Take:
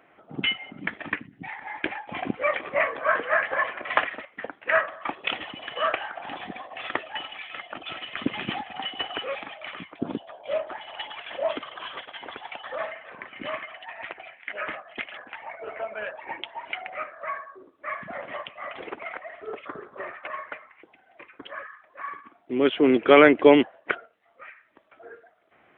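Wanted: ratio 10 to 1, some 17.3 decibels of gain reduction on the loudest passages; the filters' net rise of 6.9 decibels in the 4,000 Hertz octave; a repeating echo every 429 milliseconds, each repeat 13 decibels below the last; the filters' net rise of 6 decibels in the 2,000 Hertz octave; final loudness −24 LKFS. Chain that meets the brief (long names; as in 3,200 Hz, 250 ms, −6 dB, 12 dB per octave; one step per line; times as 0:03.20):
parametric band 2,000 Hz +5.5 dB
parametric band 4,000 Hz +7.5 dB
downward compressor 10 to 1, threshold −25 dBFS
repeating echo 429 ms, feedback 22%, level −13 dB
level +7.5 dB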